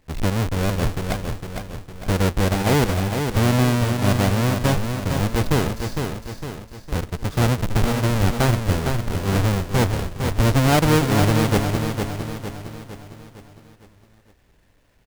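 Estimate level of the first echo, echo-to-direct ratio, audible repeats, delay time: −6.0 dB, −5.0 dB, 5, 457 ms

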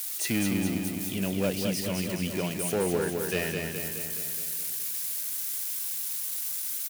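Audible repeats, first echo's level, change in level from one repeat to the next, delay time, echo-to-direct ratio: 7, −4.5 dB, −4.5 dB, 210 ms, −2.5 dB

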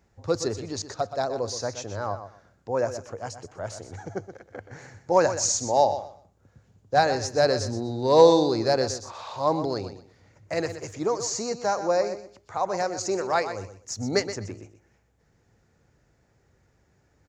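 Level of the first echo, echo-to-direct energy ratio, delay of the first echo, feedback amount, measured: −11.0 dB, −11.0 dB, 124 ms, 21%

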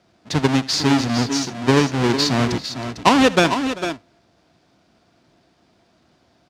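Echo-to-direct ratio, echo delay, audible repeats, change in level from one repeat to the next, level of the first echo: −8.0 dB, 75 ms, 3, repeats not evenly spaced, −19.0 dB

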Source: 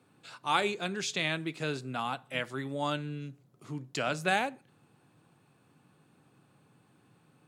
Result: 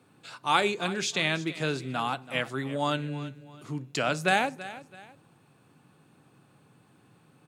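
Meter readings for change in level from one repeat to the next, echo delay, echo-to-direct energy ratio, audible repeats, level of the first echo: −9.5 dB, 331 ms, −15.5 dB, 2, −16.0 dB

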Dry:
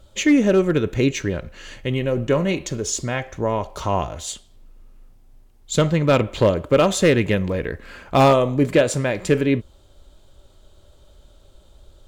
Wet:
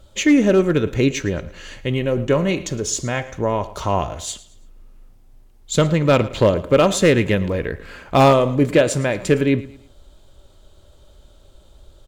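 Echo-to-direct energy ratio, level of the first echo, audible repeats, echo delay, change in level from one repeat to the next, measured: −18.0 dB, −18.5 dB, 2, 111 ms, −9.0 dB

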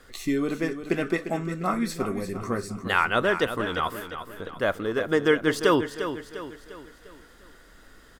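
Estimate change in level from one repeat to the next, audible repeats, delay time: −6.5 dB, 4, 350 ms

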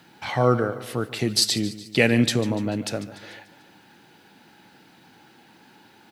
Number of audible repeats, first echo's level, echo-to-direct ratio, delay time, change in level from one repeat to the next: 4, −16.0 dB, −14.5 dB, 146 ms, −5.5 dB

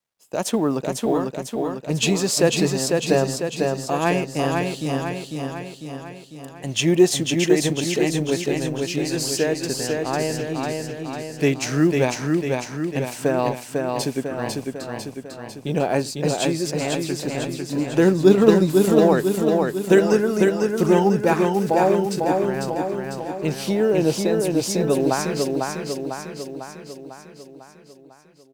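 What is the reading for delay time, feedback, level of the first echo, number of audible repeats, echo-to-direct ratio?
499 ms, 57%, −3.5 dB, 7, −2.0 dB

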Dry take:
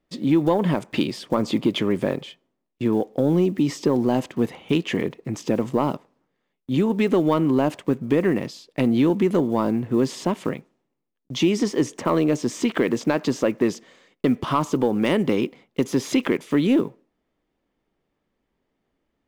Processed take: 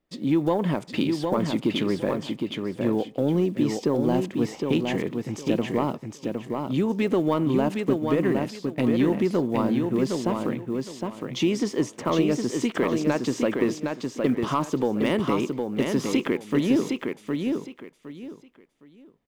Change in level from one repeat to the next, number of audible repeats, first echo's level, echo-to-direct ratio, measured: −12.5 dB, 3, −4.5 dB, −4.0 dB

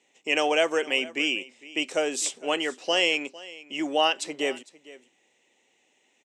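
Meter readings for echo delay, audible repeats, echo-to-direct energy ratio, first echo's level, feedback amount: 455 ms, 1, −19.5 dB, −19.5 dB, repeats not evenly spaced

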